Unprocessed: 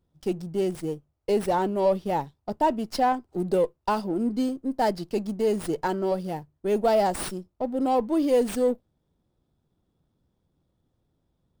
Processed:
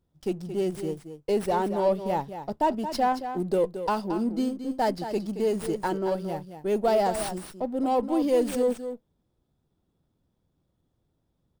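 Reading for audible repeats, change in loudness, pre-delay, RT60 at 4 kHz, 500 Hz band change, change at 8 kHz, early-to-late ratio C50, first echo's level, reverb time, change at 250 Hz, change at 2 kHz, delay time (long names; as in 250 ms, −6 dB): 1, −1.0 dB, no reverb audible, no reverb audible, −1.0 dB, −1.0 dB, no reverb audible, −10.0 dB, no reverb audible, −1.0 dB, −1.0 dB, 224 ms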